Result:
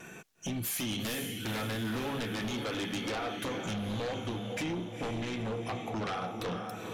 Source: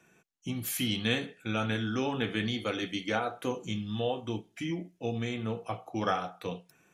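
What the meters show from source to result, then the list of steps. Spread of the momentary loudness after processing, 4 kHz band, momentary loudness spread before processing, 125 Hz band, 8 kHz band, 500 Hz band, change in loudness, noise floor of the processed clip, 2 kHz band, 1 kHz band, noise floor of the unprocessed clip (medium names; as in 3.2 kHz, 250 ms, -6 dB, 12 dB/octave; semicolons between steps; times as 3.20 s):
3 LU, -2.5 dB, 8 LU, -1.5 dB, +2.0 dB, -2.5 dB, -2.0 dB, -48 dBFS, -2.5 dB, -2.0 dB, -67 dBFS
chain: compression 4:1, threshold -47 dBFS, peak gain reduction 20 dB; wow and flutter 22 cents; echo that smears into a reverb 475 ms, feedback 51%, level -8 dB; sine folder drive 12 dB, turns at -30.5 dBFS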